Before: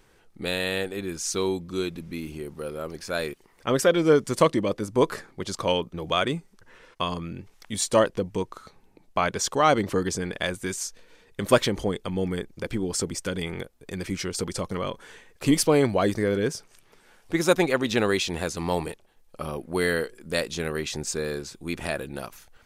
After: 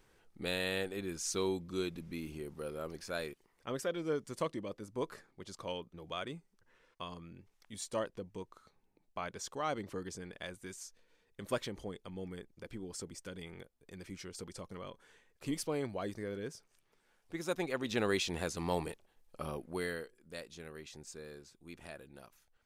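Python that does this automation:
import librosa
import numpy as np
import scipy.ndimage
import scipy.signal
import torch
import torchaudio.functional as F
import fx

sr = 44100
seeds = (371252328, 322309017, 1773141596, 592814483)

y = fx.gain(x, sr, db=fx.line((2.92, -8.0), (3.84, -16.5), (17.45, -16.5), (18.15, -8.0), (19.53, -8.0), (20.19, -19.5)))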